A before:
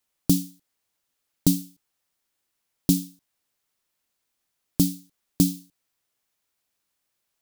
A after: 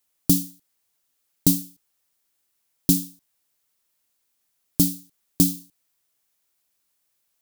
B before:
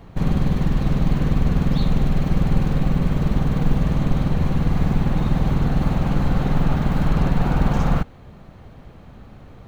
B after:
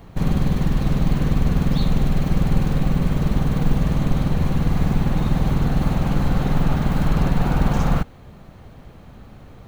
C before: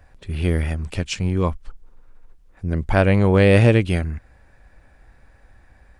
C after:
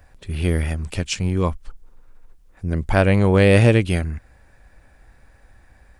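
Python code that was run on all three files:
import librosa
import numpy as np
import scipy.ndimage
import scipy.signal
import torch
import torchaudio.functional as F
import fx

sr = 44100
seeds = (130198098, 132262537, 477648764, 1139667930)

y = fx.high_shelf(x, sr, hz=6400.0, db=7.5)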